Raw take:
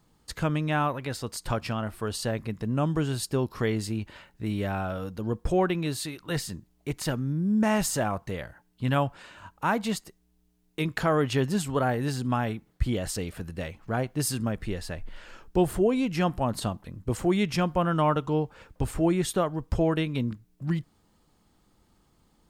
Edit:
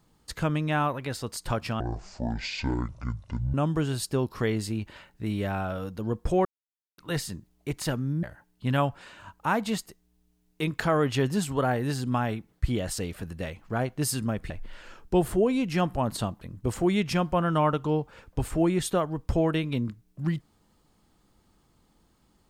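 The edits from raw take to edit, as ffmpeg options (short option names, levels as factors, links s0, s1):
-filter_complex "[0:a]asplit=7[s0][s1][s2][s3][s4][s5][s6];[s0]atrim=end=1.804[s7];[s1]atrim=start=1.8:end=2.74,asetpts=PTS-STARTPTS,asetrate=23814,aresample=44100[s8];[s2]atrim=start=2.736:end=5.65,asetpts=PTS-STARTPTS,afade=t=out:st=2.91:d=0.004:c=hsin[s9];[s3]atrim=start=5.65:end=6.18,asetpts=PTS-STARTPTS,volume=0[s10];[s4]atrim=start=6.18:end=7.432,asetpts=PTS-STARTPTS,afade=t=in:d=0.004:c=hsin[s11];[s5]atrim=start=8.408:end=14.682[s12];[s6]atrim=start=14.928[s13];[s7][s8]acrossfade=d=0.004:c1=hsin:c2=hsin[s14];[s9][s10][s11]concat=n=3:v=0:a=1[s15];[s14][s15]acrossfade=d=0.004:c1=hsin:c2=hsin[s16];[s16][s12]acrossfade=d=0.004:c1=hsin:c2=hsin[s17];[s17][s13]acrossfade=d=0.004:c1=hsin:c2=hsin"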